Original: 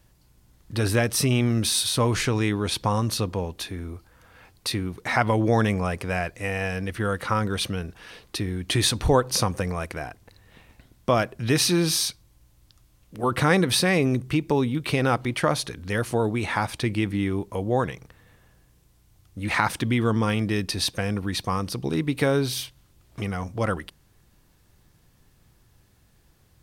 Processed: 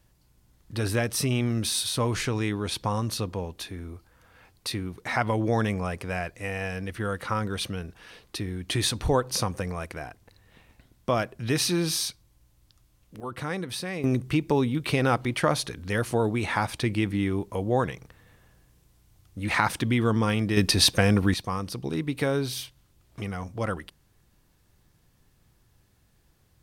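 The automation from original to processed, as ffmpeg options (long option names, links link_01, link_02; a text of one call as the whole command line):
ffmpeg -i in.wav -af "asetnsamples=nb_out_samples=441:pad=0,asendcmd='13.2 volume volume -12dB;14.04 volume volume -1dB;20.57 volume volume 6dB;21.34 volume volume -4dB',volume=-4dB" out.wav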